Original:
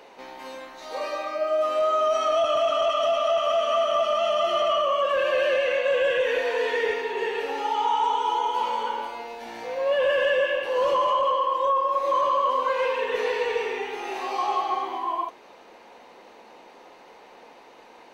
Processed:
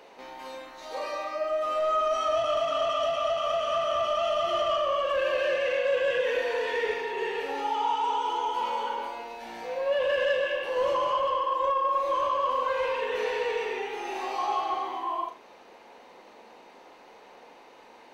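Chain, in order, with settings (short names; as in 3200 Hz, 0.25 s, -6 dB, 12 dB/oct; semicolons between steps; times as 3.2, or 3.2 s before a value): soft clip -16 dBFS, distortion -22 dB; flutter echo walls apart 6.8 m, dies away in 0.28 s; gain -3 dB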